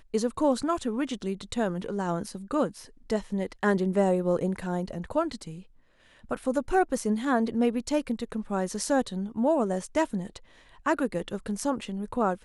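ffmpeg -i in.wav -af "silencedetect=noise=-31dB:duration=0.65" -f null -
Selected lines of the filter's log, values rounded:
silence_start: 5.49
silence_end: 6.31 | silence_duration: 0.82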